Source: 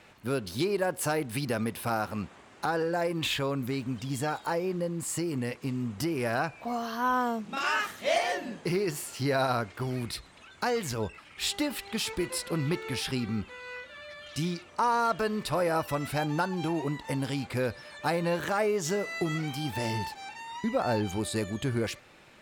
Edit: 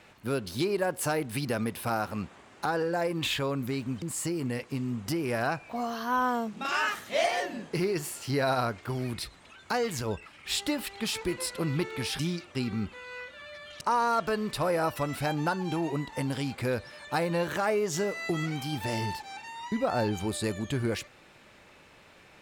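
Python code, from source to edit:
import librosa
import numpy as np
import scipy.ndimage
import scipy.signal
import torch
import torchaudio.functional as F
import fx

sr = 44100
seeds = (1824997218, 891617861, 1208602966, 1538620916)

y = fx.edit(x, sr, fx.cut(start_s=4.02, length_s=0.92),
    fx.move(start_s=14.37, length_s=0.36, to_s=13.11), tone=tone)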